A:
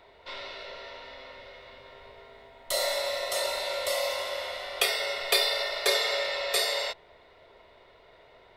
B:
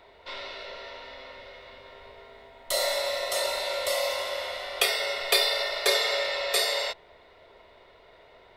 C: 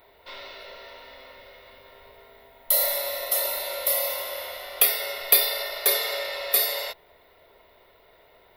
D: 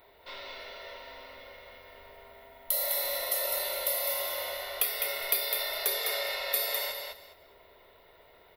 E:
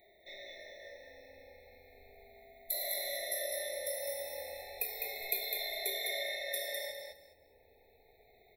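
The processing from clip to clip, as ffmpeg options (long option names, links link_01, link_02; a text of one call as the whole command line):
ffmpeg -i in.wav -af "equalizer=frequency=130:width_type=o:width=0.25:gain=-4.5,volume=1.5dB" out.wav
ffmpeg -i in.wav -af "aexciter=amount=12.1:drive=6.5:freq=11000,volume=-2.5dB" out.wav
ffmpeg -i in.wav -filter_complex "[0:a]acompressor=threshold=-26dB:ratio=2.5,asplit=2[link_01][link_02];[link_02]aecho=0:1:205|410|615:0.562|0.118|0.0248[link_03];[link_01][link_03]amix=inputs=2:normalize=0,volume=-2.5dB" out.wav
ffmpeg -i in.wav -af "afftfilt=real='re*pow(10,10/40*sin(2*PI*(1.2*log(max(b,1)*sr/1024/100)/log(2)-(-0.33)*(pts-256)/sr)))':imag='im*pow(10,10/40*sin(2*PI*(1.2*log(max(b,1)*sr/1024/100)/log(2)-(-0.33)*(pts-256)/sr)))':win_size=1024:overlap=0.75,afftfilt=real='re*eq(mod(floor(b*sr/1024/870),2),0)':imag='im*eq(mod(floor(b*sr/1024/870),2),0)':win_size=1024:overlap=0.75,volume=-6.5dB" out.wav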